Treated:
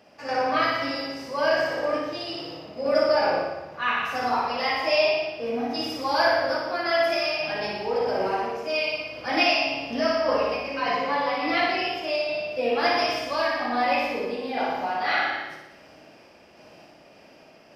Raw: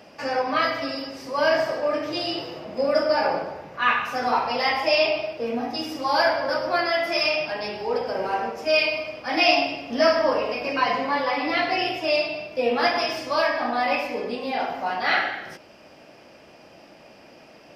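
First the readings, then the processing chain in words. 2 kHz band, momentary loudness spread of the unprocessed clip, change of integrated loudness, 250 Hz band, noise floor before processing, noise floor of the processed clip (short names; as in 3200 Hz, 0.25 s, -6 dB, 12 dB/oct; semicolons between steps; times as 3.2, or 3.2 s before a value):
-1.5 dB, 8 LU, -1.5 dB, -1.5 dB, -50 dBFS, -52 dBFS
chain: random-step tremolo; on a send: flutter echo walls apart 10 m, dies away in 0.9 s; on the sum: gain -1 dB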